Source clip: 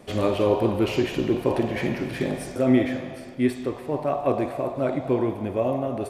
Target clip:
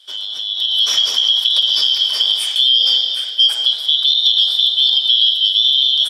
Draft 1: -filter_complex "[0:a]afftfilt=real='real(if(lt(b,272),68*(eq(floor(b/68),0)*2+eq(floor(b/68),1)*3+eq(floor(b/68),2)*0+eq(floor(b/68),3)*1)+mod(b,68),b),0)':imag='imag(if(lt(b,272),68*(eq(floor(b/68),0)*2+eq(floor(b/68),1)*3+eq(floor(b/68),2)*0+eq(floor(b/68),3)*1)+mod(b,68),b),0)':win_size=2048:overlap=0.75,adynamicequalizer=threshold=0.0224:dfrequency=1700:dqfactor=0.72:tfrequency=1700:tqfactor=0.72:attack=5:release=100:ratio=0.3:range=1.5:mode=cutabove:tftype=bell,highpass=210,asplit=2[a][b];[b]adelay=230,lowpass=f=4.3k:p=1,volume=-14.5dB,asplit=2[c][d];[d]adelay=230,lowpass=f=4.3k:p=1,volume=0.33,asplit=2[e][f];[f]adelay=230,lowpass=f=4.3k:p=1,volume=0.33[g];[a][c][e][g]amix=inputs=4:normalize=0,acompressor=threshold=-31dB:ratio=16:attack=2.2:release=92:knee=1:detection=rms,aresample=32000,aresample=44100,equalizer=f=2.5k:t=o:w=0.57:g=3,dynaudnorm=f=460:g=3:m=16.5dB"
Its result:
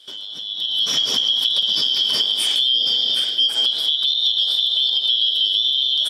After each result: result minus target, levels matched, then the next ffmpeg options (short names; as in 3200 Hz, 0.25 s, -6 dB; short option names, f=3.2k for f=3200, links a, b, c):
250 Hz band +15.0 dB; compressor: peak gain reduction +8 dB
-filter_complex "[0:a]afftfilt=real='real(if(lt(b,272),68*(eq(floor(b/68),0)*2+eq(floor(b/68),1)*3+eq(floor(b/68),2)*0+eq(floor(b/68),3)*1)+mod(b,68),b),0)':imag='imag(if(lt(b,272),68*(eq(floor(b/68),0)*2+eq(floor(b/68),1)*3+eq(floor(b/68),2)*0+eq(floor(b/68),3)*1)+mod(b,68),b),0)':win_size=2048:overlap=0.75,adynamicequalizer=threshold=0.0224:dfrequency=1700:dqfactor=0.72:tfrequency=1700:tqfactor=0.72:attack=5:release=100:ratio=0.3:range=1.5:mode=cutabove:tftype=bell,highpass=650,asplit=2[a][b];[b]adelay=230,lowpass=f=4.3k:p=1,volume=-14.5dB,asplit=2[c][d];[d]adelay=230,lowpass=f=4.3k:p=1,volume=0.33,asplit=2[e][f];[f]adelay=230,lowpass=f=4.3k:p=1,volume=0.33[g];[a][c][e][g]amix=inputs=4:normalize=0,acompressor=threshold=-31dB:ratio=16:attack=2.2:release=92:knee=1:detection=rms,aresample=32000,aresample=44100,equalizer=f=2.5k:t=o:w=0.57:g=3,dynaudnorm=f=460:g=3:m=16.5dB"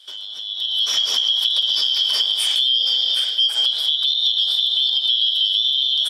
compressor: peak gain reduction +8 dB
-filter_complex "[0:a]afftfilt=real='real(if(lt(b,272),68*(eq(floor(b/68),0)*2+eq(floor(b/68),1)*3+eq(floor(b/68),2)*0+eq(floor(b/68),3)*1)+mod(b,68),b),0)':imag='imag(if(lt(b,272),68*(eq(floor(b/68),0)*2+eq(floor(b/68),1)*3+eq(floor(b/68),2)*0+eq(floor(b/68),3)*1)+mod(b,68),b),0)':win_size=2048:overlap=0.75,adynamicequalizer=threshold=0.0224:dfrequency=1700:dqfactor=0.72:tfrequency=1700:tqfactor=0.72:attack=5:release=100:ratio=0.3:range=1.5:mode=cutabove:tftype=bell,highpass=650,asplit=2[a][b];[b]adelay=230,lowpass=f=4.3k:p=1,volume=-14.5dB,asplit=2[c][d];[d]adelay=230,lowpass=f=4.3k:p=1,volume=0.33,asplit=2[e][f];[f]adelay=230,lowpass=f=4.3k:p=1,volume=0.33[g];[a][c][e][g]amix=inputs=4:normalize=0,acompressor=threshold=-22.5dB:ratio=16:attack=2.2:release=92:knee=1:detection=rms,aresample=32000,aresample=44100,equalizer=f=2.5k:t=o:w=0.57:g=3,dynaudnorm=f=460:g=3:m=16.5dB"